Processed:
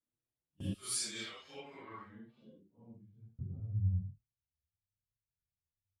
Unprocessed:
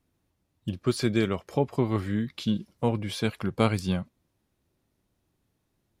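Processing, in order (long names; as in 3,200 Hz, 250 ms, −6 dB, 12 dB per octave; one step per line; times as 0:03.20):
random phases in long frames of 200 ms
noise gate with hold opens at −35 dBFS
0:00.73–0:03.39: first-order pre-emphasis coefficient 0.97
downward compressor 16 to 1, threshold −32 dBFS, peak gain reduction 13.5 dB
low-pass filter sweep 10,000 Hz → 100 Hz, 0:00.92–0:03.32
barber-pole flanger 6.6 ms +1 Hz
level +2 dB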